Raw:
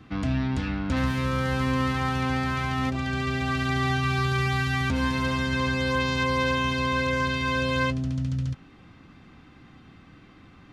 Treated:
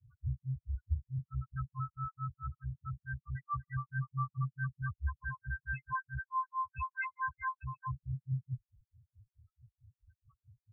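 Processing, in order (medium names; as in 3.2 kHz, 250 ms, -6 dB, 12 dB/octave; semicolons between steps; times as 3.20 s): Chebyshev band-stop 120–1100 Hz, order 3; granulator 153 ms, grains 4.6 per s, spray 12 ms, pitch spread up and down by 0 st; loudest bins only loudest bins 2; trim +2 dB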